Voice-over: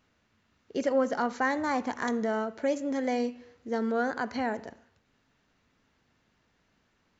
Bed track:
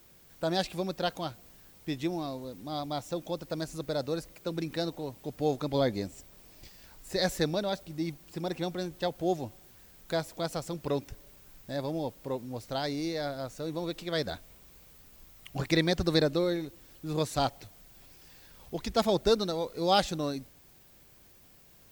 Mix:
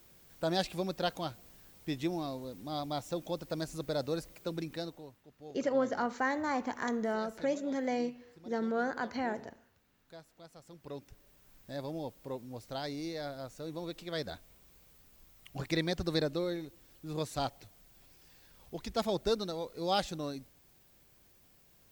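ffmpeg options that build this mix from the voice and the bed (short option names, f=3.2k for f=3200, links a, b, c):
-filter_complex "[0:a]adelay=4800,volume=-4dB[a];[1:a]volume=13dB,afade=t=out:st=4.39:d=0.84:silence=0.112202,afade=t=in:st=10.55:d=1.21:silence=0.177828[b];[a][b]amix=inputs=2:normalize=0"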